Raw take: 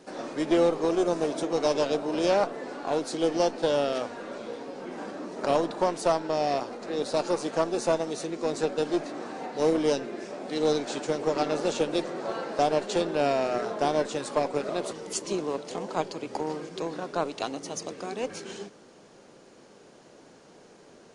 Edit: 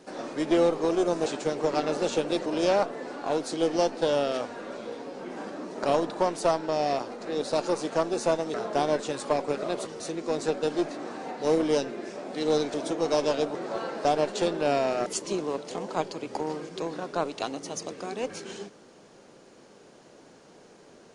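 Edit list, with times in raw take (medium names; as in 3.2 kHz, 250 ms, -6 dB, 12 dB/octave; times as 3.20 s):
1.26–2.07 s: swap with 10.89–12.09 s
13.60–15.06 s: move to 8.15 s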